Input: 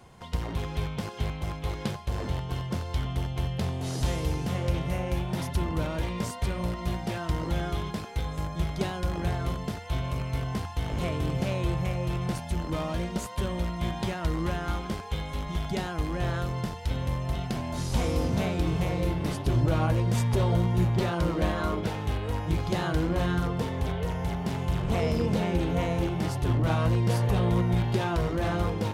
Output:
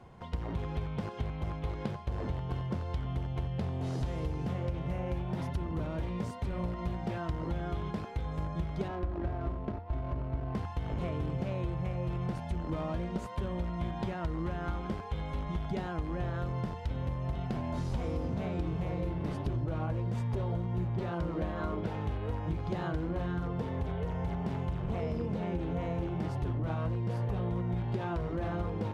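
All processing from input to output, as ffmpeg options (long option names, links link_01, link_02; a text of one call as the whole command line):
ffmpeg -i in.wav -filter_complex "[0:a]asettb=1/sr,asplit=3[link_01][link_02][link_03];[link_01]atrim=end=5.674[link_04];[link_02]atrim=start=5.67:end=6.53,asetpts=PTS-STARTPTS,afade=type=in:duration=0.004:curve=qsin,afade=type=out:start_time=0.856:duration=0.004:curve=qsin,highpass=48,equalizer=frequency=1200:width=0.35:gain=-3.5,aeval=exprs='0.075*(abs(mod(val(0)/0.075+3,4)-2)-1)':channel_layout=same[link_05];[link_03]atrim=start=6.526[link_06];[link_04][link_05]acrossfade=duration=0.004:curve1=hsin:curve2=qsin[link_07];[link_07][link_06]acrossfade=duration=0.004:curve1=qsin:curve2=hsin,asettb=1/sr,asplit=3[link_08][link_09][link_10];[link_08]atrim=end=8.884[link_11];[link_09]atrim=start=8.88:end=10.55,asetpts=PTS-STARTPTS,afade=type=in:duration=0.004:curve=qsin,afade=type=out:start_time=1.666:duration=0.004:curve=qsin,highshelf=frequency=5000:gain=8.5,aecho=1:1:3.1:0.57,atrim=end_sample=73647,adynamicsmooth=sensitivity=3:basefreq=510[link_12];[link_10]atrim=start=10.546[link_13];[link_11][link_12]acrossfade=duration=0.004:curve1=hsin:curve2=qsin[link_14];[link_14][link_13]acrossfade=duration=0.004:curve1=qsin:curve2=hsin,lowpass=frequency=1400:poles=1,acompressor=threshold=-30dB:ratio=6" out.wav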